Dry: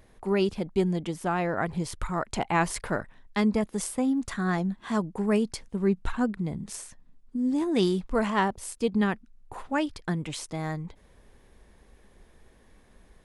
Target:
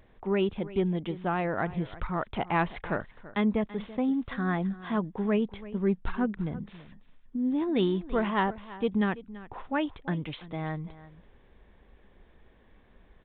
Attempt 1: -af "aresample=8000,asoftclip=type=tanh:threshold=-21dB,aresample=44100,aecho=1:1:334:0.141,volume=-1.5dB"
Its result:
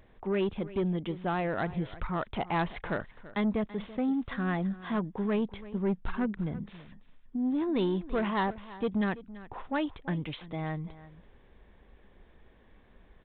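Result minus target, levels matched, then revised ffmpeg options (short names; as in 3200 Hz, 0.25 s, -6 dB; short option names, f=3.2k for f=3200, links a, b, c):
soft clip: distortion +16 dB
-af "aresample=8000,asoftclip=type=tanh:threshold=-10.5dB,aresample=44100,aecho=1:1:334:0.141,volume=-1.5dB"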